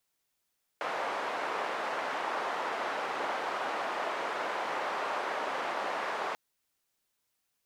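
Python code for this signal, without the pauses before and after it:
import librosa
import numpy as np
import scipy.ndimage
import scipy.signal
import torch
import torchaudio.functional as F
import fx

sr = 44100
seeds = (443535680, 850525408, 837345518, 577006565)

y = fx.band_noise(sr, seeds[0], length_s=5.54, low_hz=610.0, high_hz=990.0, level_db=-34.0)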